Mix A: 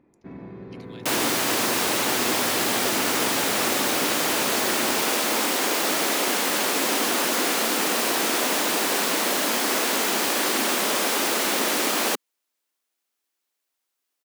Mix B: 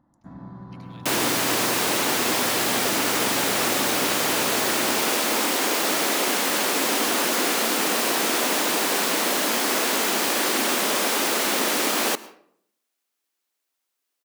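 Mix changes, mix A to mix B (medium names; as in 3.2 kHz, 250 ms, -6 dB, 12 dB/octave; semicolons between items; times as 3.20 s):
speech -6.5 dB; first sound: add static phaser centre 1 kHz, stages 4; reverb: on, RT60 0.70 s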